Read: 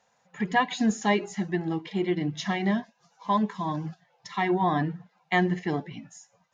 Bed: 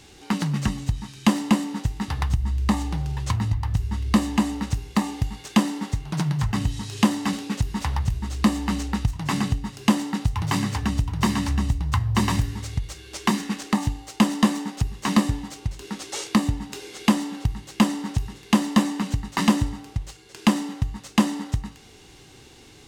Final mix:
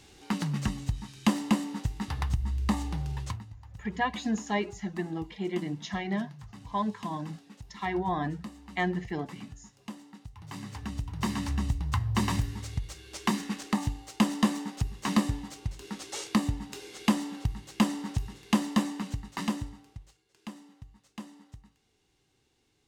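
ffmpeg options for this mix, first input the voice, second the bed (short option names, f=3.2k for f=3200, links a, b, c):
-filter_complex "[0:a]adelay=3450,volume=-5.5dB[a];[1:a]volume=11dB,afade=t=out:st=3.18:d=0.26:silence=0.141254,afade=t=in:st=10.37:d=1.31:silence=0.141254,afade=t=out:st=18.48:d=1.77:silence=0.133352[b];[a][b]amix=inputs=2:normalize=0"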